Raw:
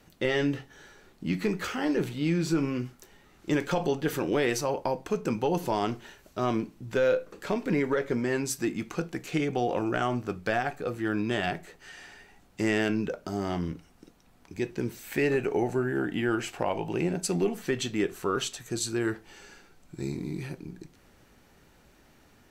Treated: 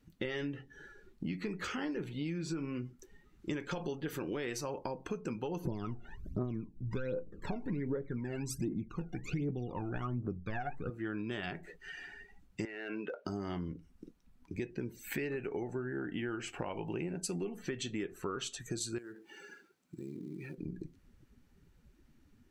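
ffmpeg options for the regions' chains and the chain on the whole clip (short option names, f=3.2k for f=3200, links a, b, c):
-filter_complex "[0:a]asettb=1/sr,asplit=3[a][b][c];[a]atrim=end=5.654[d];[b]atrim=start=5.65:end=10.9,asetpts=PTS-STARTPTS,afade=t=in:d=0.004:c=qsin,afade=t=out:st=5.246:d=0.004:c=qsin,tiltshelf=f=760:g=6.5,bandreject=f=3.1k:w=12,aphaser=in_gain=1:out_gain=1:delay=1.5:decay=0.77:speed=1.3:type=triangular[e];[c]atrim=start=10.896[f];[d][e]acrossfade=d=0.004:c1=hsin:c2=qsin[g];[g][f]acrossfade=d=0.004:c1=qsin:c2=hsin,asettb=1/sr,asplit=3[h][i][j];[h]atrim=end=12.654[k];[i]atrim=start=12.65:end=13.25,asetpts=PTS-STARTPTS,afade=t=in:d=0.004:c=qsin,afade=t=out:st=0.596:d=0.004:c=qsin,highpass=470,lowpass=3.5k,acompressor=threshold=-32dB:ratio=5:attack=3.2:release=140:knee=1:detection=peak,asoftclip=type=hard:threshold=-30dB[l];[j]atrim=start=13.246[m];[k][l]acrossfade=d=0.004:c1=hsin:c2=qsin[n];[n][m]acrossfade=d=0.004:c1=qsin:c2=hsin,asettb=1/sr,asplit=3[o][p][q];[o]atrim=end=18.984[r];[p]atrim=start=18.98:end=20.58,asetpts=PTS-STARTPTS,afade=t=in:d=0.004:c=qsin,afade=t=out:st=1.596:d=0.004:c=qsin,highpass=180,acompressor=threshold=-43dB:ratio=4:attack=3.2:release=140:knee=1:detection=peak,acrusher=bits=3:mode=log:mix=0:aa=0.000001[s];[q]atrim=start=20.576[t];[r][s]acrossfade=d=0.004:c1=hsin:c2=qsin[u];[u][t]acrossfade=d=0.004:c1=qsin:c2=hsin,afftdn=nr=17:nf=-48,equalizer=f=690:w=2:g=-6,acompressor=threshold=-38dB:ratio=6,volume=2.5dB"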